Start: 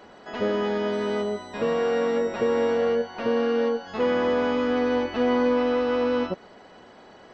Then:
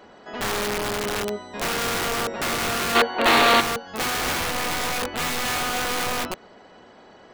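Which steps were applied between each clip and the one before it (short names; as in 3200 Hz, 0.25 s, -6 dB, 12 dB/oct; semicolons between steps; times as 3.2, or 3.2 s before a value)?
wrapped overs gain 20.5 dB; spectral gain 2.96–3.61, 230–4600 Hz +10 dB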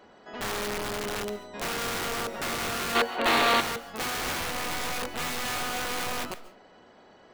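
reverb RT60 0.35 s, pre-delay 0.1 s, DRR 15.5 dB; gain -6 dB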